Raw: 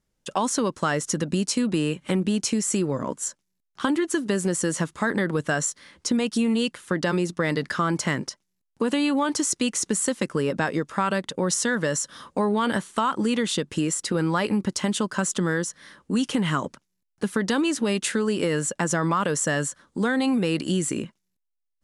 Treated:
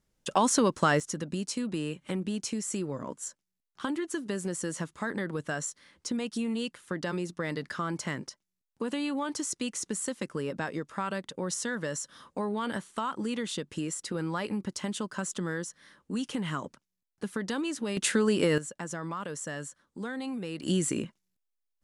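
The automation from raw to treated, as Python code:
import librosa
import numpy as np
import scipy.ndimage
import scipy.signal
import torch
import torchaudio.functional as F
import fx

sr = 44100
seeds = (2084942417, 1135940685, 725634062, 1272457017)

y = fx.gain(x, sr, db=fx.steps((0.0, 0.0), (1.0, -9.0), (17.97, -1.0), (18.58, -13.0), (20.63, -3.0)))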